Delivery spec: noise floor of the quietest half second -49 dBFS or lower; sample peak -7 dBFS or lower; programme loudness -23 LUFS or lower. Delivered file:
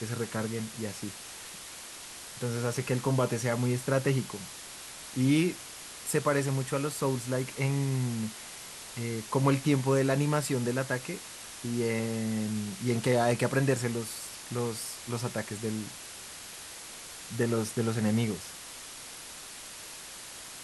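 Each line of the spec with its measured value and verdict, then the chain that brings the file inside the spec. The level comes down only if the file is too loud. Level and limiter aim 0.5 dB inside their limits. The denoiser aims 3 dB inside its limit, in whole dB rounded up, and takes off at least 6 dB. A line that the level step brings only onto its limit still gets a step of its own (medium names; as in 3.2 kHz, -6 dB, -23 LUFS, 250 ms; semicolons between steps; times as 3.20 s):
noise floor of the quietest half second -45 dBFS: fail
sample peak -13.0 dBFS: pass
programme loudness -31.0 LUFS: pass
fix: noise reduction 7 dB, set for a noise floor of -45 dBFS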